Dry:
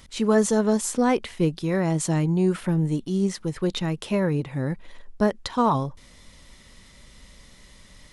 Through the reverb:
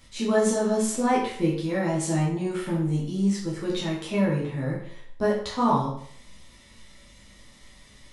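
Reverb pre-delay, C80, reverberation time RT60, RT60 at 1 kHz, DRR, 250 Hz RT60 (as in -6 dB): 9 ms, 7.5 dB, 0.60 s, 0.60 s, -6.5 dB, 0.60 s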